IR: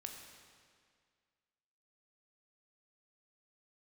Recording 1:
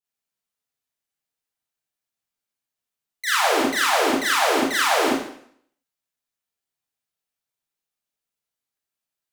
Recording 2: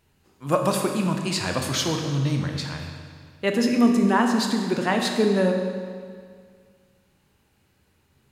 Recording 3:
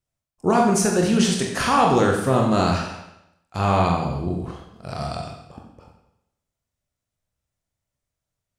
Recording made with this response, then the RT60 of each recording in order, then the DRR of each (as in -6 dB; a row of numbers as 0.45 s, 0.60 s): 2; 0.60 s, 2.0 s, 0.85 s; -8.5 dB, 2.5 dB, -0.5 dB